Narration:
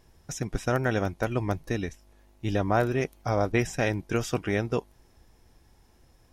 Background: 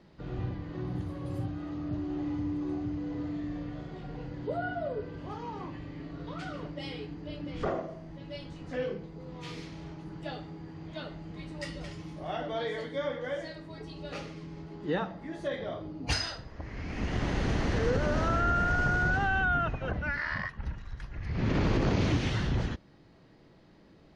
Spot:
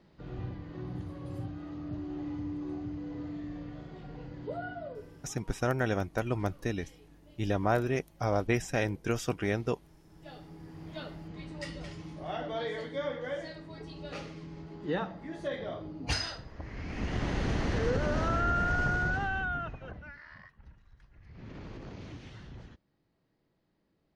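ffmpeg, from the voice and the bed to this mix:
ffmpeg -i stem1.wav -i stem2.wav -filter_complex "[0:a]adelay=4950,volume=-3.5dB[link_01];[1:a]volume=13dB,afade=type=out:start_time=4.5:duration=0.93:silence=0.188365,afade=type=in:start_time=10.07:duration=0.8:silence=0.141254,afade=type=out:start_time=18.83:duration=1.36:silence=0.149624[link_02];[link_01][link_02]amix=inputs=2:normalize=0" out.wav

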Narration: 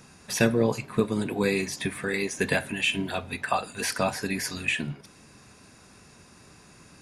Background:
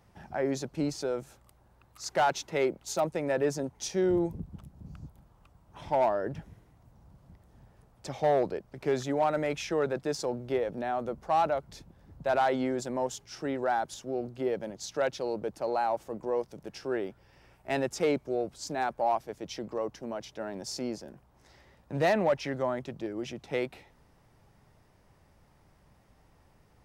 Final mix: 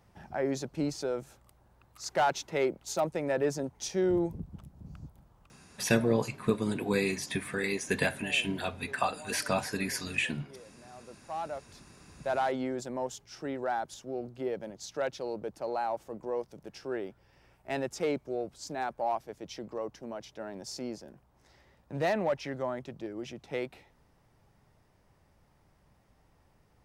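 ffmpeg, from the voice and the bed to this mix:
ffmpeg -i stem1.wav -i stem2.wav -filter_complex "[0:a]adelay=5500,volume=-3.5dB[link_01];[1:a]volume=17.5dB,afade=type=out:start_time=5.42:duration=0.2:silence=0.0891251,afade=type=in:start_time=10.89:duration=1.41:silence=0.11885[link_02];[link_01][link_02]amix=inputs=2:normalize=0" out.wav

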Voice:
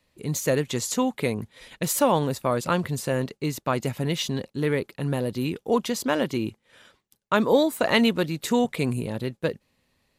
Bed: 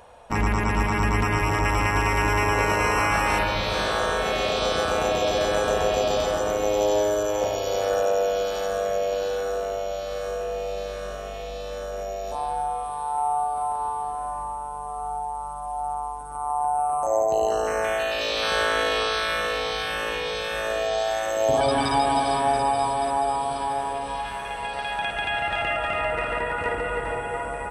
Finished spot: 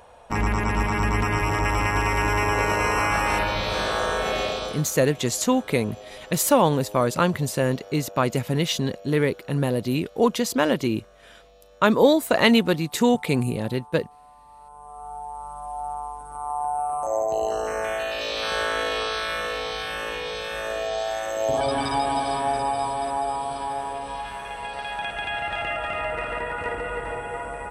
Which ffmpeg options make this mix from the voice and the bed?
ffmpeg -i stem1.wav -i stem2.wav -filter_complex "[0:a]adelay=4500,volume=3dB[link_01];[1:a]volume=17dB,afade=type=out:start_time=4.39:duration=0.46:silence=0.105925,afade=type=in:start_time=14.45:duration=1.16:silence=0.133352[link_02];[link_01][link_02]amix=inputs=2:normalize=0" out.wav

